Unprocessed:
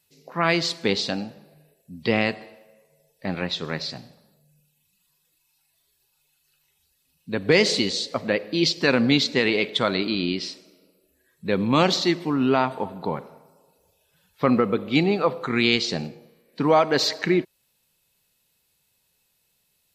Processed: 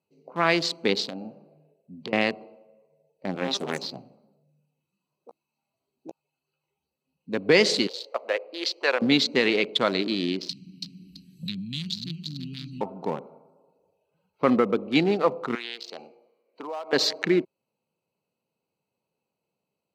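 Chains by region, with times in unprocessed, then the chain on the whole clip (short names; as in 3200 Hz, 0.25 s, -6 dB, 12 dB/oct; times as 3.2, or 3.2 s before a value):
1.05–2.13 compressor 20:1, threshold -28 dBFS + doubler 32 ms -11 dB
3.34–7.34 echoes that change speed 87 ms, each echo +7 st, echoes 2, each echo -6 dB + doubler 15 ms -7 dB
7.87–9.02 HPF 490 Hz 24 dB/oct + high shelf 5200 Hz -9.5 dB
10.49–12.81 elliptic band-stop 170–3300 Hz, stop band 70 dB + feedback echo 0.331 s, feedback 25%, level -7 dB + three-band squash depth 100%
15.55–16.93 HPF 670 Hz + compressor 4:1, threshold -29 dBFS
whole clip: Wiener smoothing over 25 samples; HPF 200 Hz 12 dB/oct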